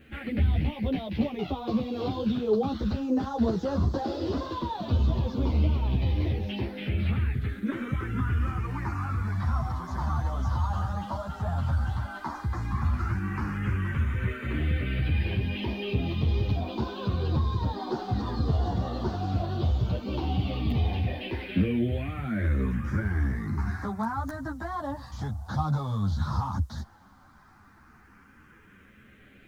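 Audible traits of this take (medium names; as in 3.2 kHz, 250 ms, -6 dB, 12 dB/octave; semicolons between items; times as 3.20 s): phasing stages 4, 0.068 Hz, lowest notch 390–2200 Hz; a quantiser's noise floor 12-bit, dither none; a shimmering, thickened sound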